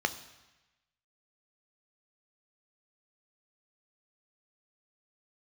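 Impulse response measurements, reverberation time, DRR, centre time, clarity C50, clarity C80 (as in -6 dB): 1.1 s, 9.5 dB, 7 ms, 14.5 dB, 16.0 dB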